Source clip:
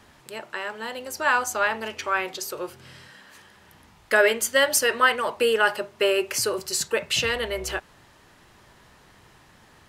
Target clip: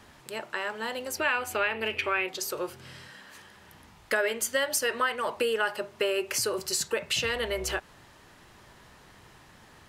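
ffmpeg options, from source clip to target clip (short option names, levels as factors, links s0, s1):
-filter_complex "[0:a]asettb=1/sr,asplit=3[s0][s1][s2];[s0]atrim=end=1.174[s3];[s1]atrim=start=1.17:end=2.29,asetpts=PTS-STARTPTS,afade=t=in:d=0.004:c=qsin,afade=t=out:st=1.116:d=0.004:c=qsin,equalizer=f=100:t=o:w=0.67:g=8,equalizer=f=400:t=o:w=0.67:g=6,equalizer=f=1000:t=o:w=0.67:g=-3,equalizer=f=2500:t=o:w=0.67:g=12,equalizer=f=6300:t=o:w=0.67:g=-11[s4];[s2]atrim=start=2.286[s5];[s3][s4]acrossfade=d=0.004:c1=hsin:c2=qsin[s6];[s6][s5]acrossfade=d=0.004:c1=qsin:c2=hsin,acompressor=threshold=0.0501:ratio=3"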